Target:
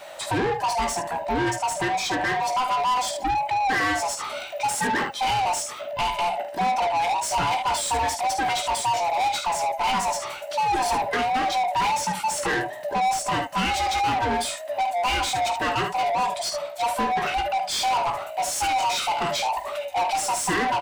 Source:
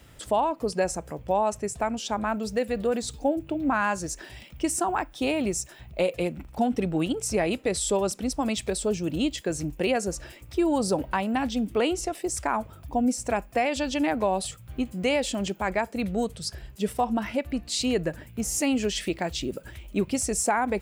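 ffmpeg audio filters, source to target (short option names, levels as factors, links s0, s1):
-filter_complex "[0:a]afftfilt=real='real(if(lt(b,1008),b+24*(1-2*mod(floor(b/24),2)),b),0)':imag='imag(if(lt(b,1008),b+24*(1-2*mod(floor(b/24),2)),b),0)':win_size=2048:overlap=0.75,aecho=1:1:17|49|75:0.447|0.237|0.251,asplit=2[s0][s1];[s1]highpass=f=720:p=1,volume=15.8,asoftclip=type=tanh:threshold=0.251[s2];[s0][s2]amix=inputs=2:normalize=0,lowpass=f=4600:p=1,volume=0.501,volume=0.596"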